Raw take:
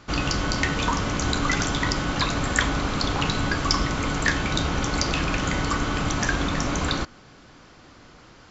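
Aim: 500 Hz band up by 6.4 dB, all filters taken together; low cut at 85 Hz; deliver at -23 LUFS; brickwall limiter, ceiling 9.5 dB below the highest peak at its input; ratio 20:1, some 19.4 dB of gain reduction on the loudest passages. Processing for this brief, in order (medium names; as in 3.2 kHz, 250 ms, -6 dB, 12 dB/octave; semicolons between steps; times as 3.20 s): high-pass 85 Hz; peaking EQ 500 Hz +8 dB; compression 20:1, threshold -36 dBFS; trim +19 dB; peak limiter -13 dBFS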